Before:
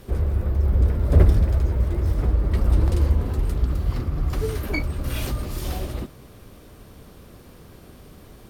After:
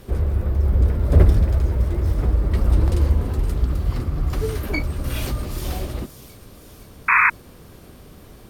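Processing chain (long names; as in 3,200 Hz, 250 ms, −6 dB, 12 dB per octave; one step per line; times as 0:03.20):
delay with a high-pass on its return 518 ms, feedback 60%, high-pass 4,800 Hz, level −10 dB
sound drawn into the spectrogram noise, 0:07.08–0:07.30, 910–2,600 Hz −16 dBFS
level +1.5 dB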